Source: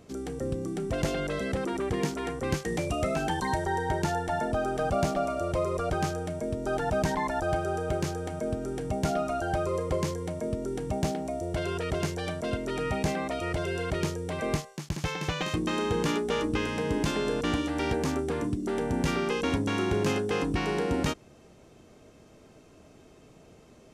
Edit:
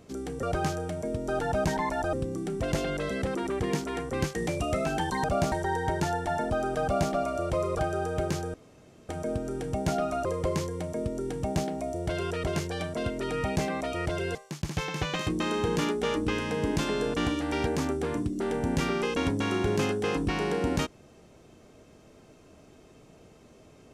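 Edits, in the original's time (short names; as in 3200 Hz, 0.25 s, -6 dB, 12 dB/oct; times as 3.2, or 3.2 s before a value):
4.85–5.13 copy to 3.54
5.81–7.51 move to 0.43
8.26 insert room tone 0.55 s
9.42–9.72 cut
13.82–14.62 cut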